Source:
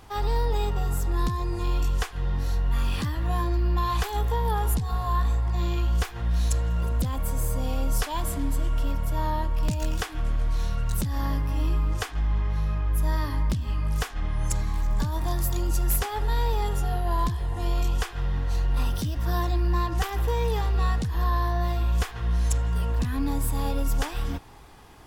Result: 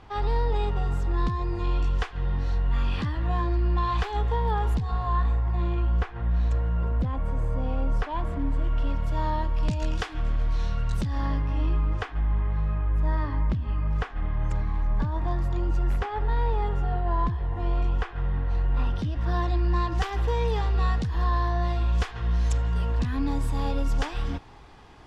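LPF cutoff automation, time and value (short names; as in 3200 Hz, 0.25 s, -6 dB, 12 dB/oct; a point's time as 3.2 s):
4.89 s 3500 Hz
5.77 s 1900 Hz
8.46 s 1900 Hz
9.11 s 4700 Hz
10.88 s 4700 Hz
12.29 s 2100 Hz
18.67 s 2100 Hz
19.85 s 5100 Hz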